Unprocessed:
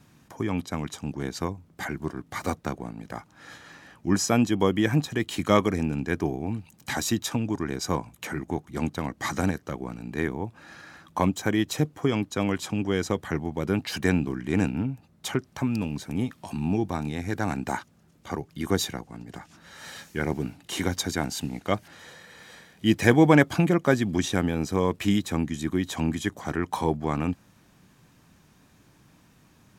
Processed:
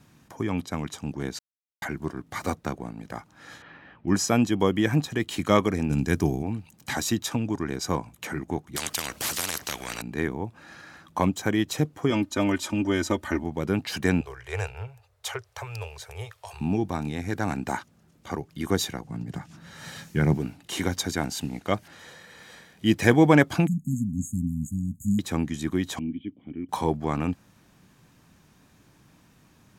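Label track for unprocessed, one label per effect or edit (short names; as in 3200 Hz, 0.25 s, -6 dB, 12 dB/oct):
1.390000	1.820000	mute
3.620000	4.080000	LPF 3200 Hz 24 dB/oct
5.900000	6.430000	tone controls bass +7 dB, treble +11 dB
8.760000	10.020000	spectral compressor 10:1
12.100000	13.440000	comb 3.3 ms, depth 82%
14.210000	16.610000	elliptic band-stop 110–440 Hz
19.040000	20.380000	bell 140 Hz +12 dB 1.2 oct
23.670000	25.190000	brick-wall FIR band-stop 270–6400 Hz
25.990000	26.690000	vocal tract filter i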